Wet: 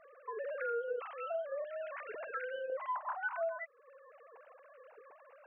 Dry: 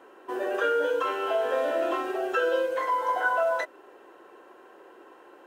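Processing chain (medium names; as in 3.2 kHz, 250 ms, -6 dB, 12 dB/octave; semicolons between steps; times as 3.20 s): formants replaced by sine waves; 1.64–2.70 s: high-order bell 700 Hz -9 dB; compression 3:1, threshold -44 dBFS, peak gain reduction 19.5 dB; trim +3 dB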